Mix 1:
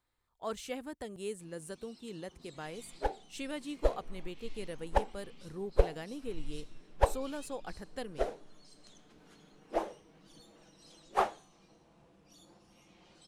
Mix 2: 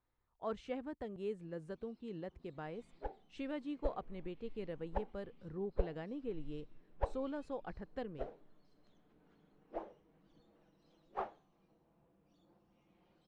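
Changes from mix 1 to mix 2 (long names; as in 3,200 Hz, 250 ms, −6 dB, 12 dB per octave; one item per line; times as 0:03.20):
first sound −7.5 dB
second sound −9.0 dB
master: add head-to-tape spacing loss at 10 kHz 32 dB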